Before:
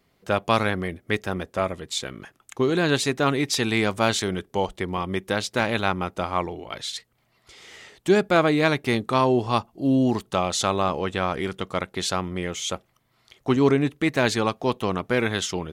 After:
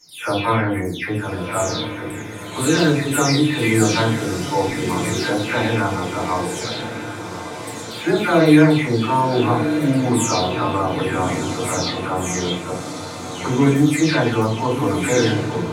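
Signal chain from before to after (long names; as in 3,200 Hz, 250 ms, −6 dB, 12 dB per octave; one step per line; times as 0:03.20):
every frequency bin delayed by itself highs early, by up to 388 ms
high-shelf EQ 6,500 Hz +9.5 dB
feedback delay with all-pass diffusion 1,219 ms, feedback 54%, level −9 dB
feedback delay network reverb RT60 0.43 s, low-frequency decay 1.6×, high-frequency decay 0.6×, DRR −6 dB
level −3.5 dB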